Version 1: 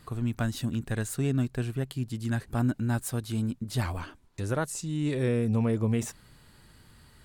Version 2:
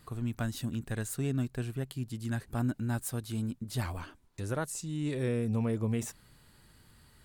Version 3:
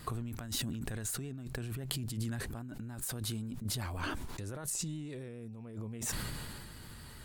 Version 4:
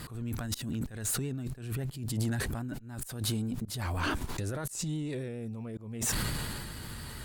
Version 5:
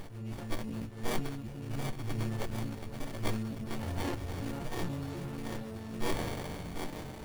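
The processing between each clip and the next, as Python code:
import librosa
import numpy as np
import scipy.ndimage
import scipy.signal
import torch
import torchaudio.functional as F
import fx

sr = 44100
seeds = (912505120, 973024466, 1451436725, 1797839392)

y1 = fx.high_shelf(x, sr, hz=10000.0, db=5.5)
y1 = F.gain(torch.from_numpy(y1), -4.5).numpy()
y2 = fx.over_compress(y1, sr, threshold_db=-43.0, ratio=-1.0)
y2 = fx.vibrato(y2, sr, rate_hz=7.3, depth_cents=32.0)
y2 = fx.sustainer(y2, sr, db_per_s=23.0)
y2 = F.gain(torch.from_numpy(y2), 1.0).numpy()
y3 = fx.auto_swell(y2, sr, attack_ms=247.0)
y3 = fx.tube_stage(y3, sr, drive_db=32.0, bias=0.25)
y3 = F.gain(torch.from_numpy(y3), 8.5).numpy()
y4 = fx.freq_snap(y3, sr, grid_st=4)
y4 = fx.echo_alternate(y4, sr, ms=367, hz=850.0, feedback_pct=80, wet_db=-4.5)
y4 = fx.running_max(y4, sr, window=33)
y4 = F.gain(torch.from_numpy(y4), -4.0).numpy()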